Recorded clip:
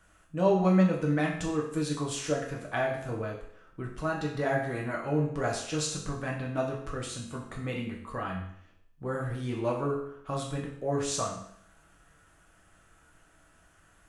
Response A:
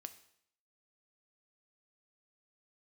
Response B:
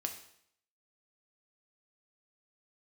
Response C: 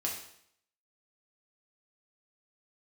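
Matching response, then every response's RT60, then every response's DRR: C; 0.65 s, 0.65 s, 0.65 s; 9.5 dB, 4.0 dB, -2.5 dB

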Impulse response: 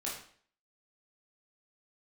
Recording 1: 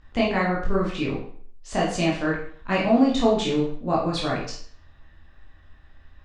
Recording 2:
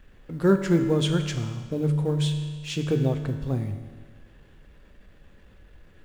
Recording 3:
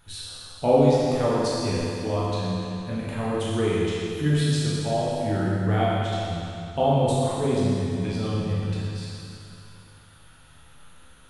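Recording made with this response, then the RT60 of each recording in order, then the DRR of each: 1; 0.50 s, 1.6 s, 2.6 s; -5.5 dB, 5.0 dB, -8.0 dB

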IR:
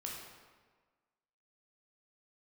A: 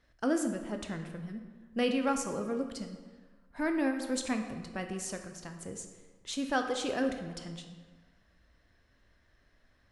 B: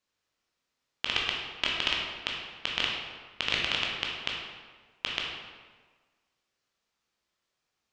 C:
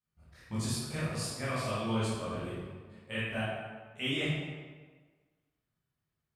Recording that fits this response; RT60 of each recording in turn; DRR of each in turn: B; 1.5 s, 1.5 s, 1.5 s; 5.0 dB, -2.5 dB, -11.5 dB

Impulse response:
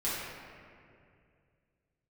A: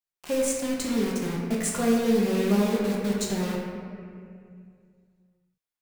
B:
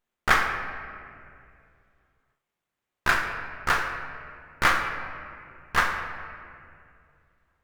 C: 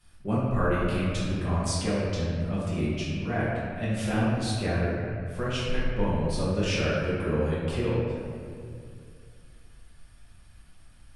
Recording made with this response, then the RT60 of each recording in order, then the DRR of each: C; 2.4 s, 2.4 s, 2.4 s; -3.5 dB, 3.0 dB, -10.0 dB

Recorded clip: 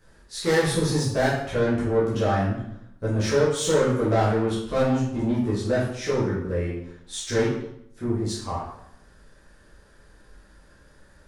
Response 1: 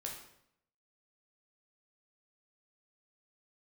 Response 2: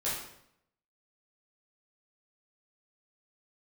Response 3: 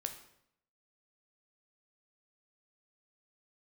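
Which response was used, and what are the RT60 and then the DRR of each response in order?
2; 0.75 s, 0.75 s, 0.75 s; -1.0 dB, -9.5 dB, 5.5 dB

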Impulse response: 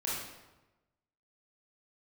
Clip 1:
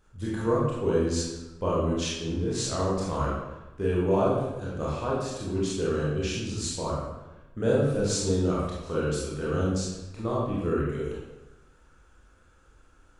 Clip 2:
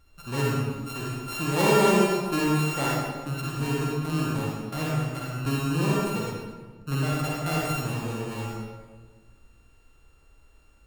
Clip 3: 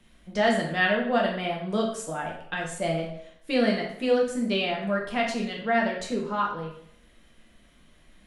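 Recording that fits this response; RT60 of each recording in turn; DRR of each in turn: 1; 1.1 s, 1.4 s, 0.70 s; -7.0 dB, -4.5 dB, -2.0 dB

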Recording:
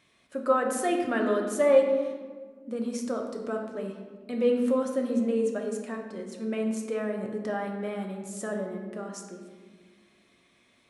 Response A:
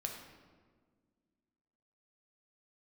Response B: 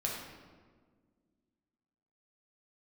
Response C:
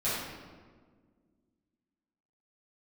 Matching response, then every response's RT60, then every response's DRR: A; 1.6 s, 1.6 s, 1.6 s; 1.5 dB, -3.0 dB, -12.5 dB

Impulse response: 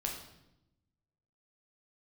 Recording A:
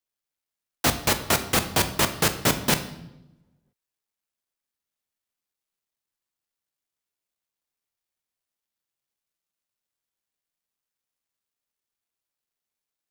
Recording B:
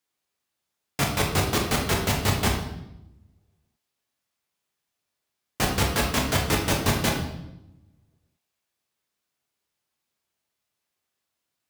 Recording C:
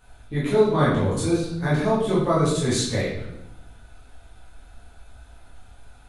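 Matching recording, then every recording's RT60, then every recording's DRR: B; 0.90 s, 0.85 s, 0.85 s; 8.0 dB, -0.5 dB, -9.0 dB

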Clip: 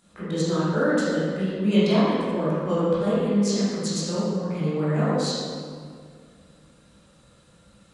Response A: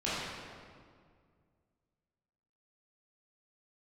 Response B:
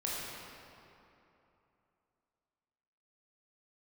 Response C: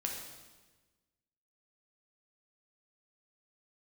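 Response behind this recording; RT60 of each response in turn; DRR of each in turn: A; 2.0 s, 3.0 s, 1.3 s; -11.0 dB, -6.5 dB, 0.0 dB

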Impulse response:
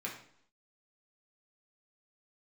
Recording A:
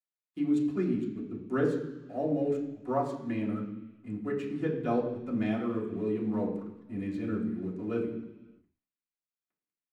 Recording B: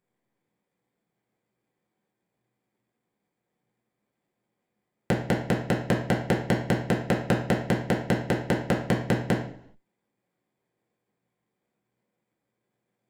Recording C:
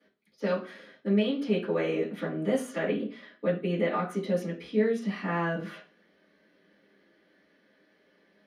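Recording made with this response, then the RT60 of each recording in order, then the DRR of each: B; no single decay rate, 0.65 s, 0.40 s; -6.0 dB, -3.5 dB, -14.0 dB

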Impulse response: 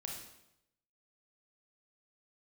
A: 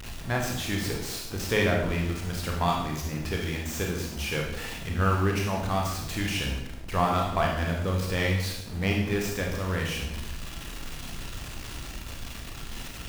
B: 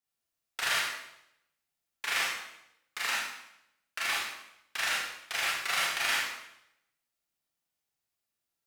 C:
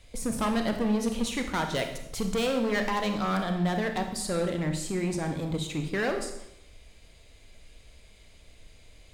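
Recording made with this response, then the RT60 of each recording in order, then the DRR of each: A; 0.85 s, 0.85 s, 0.85 s; -0.5 dB, -6.0 dB, 5.0 dB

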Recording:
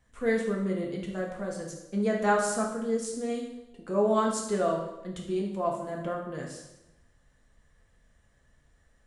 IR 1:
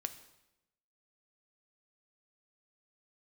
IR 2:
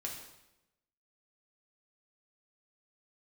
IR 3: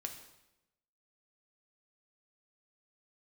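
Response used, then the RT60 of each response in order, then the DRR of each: 2; 0.90 s, 0.90 s, 0.90 s; 9.0 dB, -1.5 dB, 3.5 dB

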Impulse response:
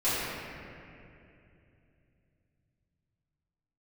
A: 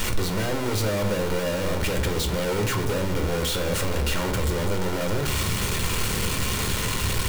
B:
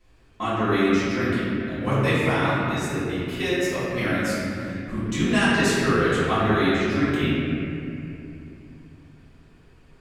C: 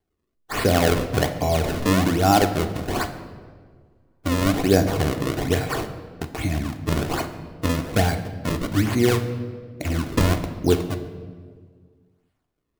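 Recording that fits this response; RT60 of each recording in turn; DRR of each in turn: B; 0.60 s, 2.7 s, 1.7 s; 4.5 dB, -15.0 dB, 6.0 dB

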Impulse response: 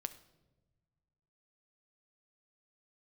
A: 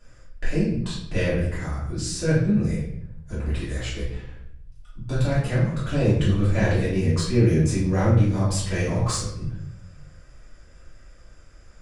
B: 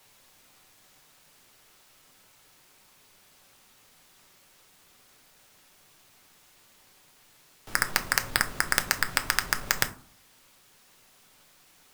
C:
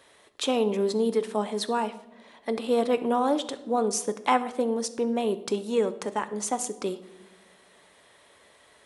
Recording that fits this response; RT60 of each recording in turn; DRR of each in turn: C; 0.70 s, 0.45 s, no single decay rate; -11.5 dB, 6.5 dB, 10.5 dB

